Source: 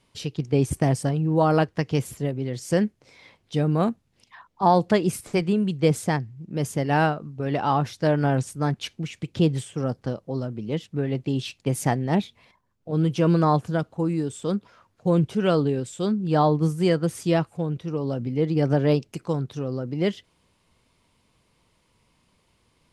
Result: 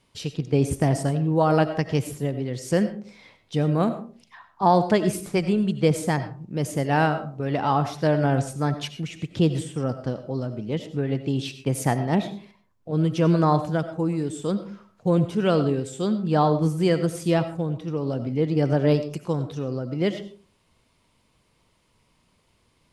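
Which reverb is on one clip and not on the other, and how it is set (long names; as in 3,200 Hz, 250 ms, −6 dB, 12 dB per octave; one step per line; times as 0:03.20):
comb and all-pass reverb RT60 0.41 s, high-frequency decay 0.4×, pre-delay 50 ms, DRR 10.5 dB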